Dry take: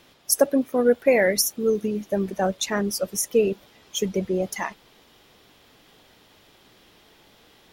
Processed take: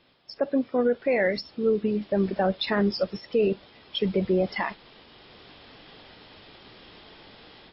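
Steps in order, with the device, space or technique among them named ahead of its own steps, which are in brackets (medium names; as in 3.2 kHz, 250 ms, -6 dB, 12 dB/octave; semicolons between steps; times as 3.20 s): low-bitrate web radio (level rider gain up to 13 dB; peak limiter -8 dBFS, peak gain reduction 6.5 dB; trim -6.5 dB; MP3 24 kbps 12 kHz)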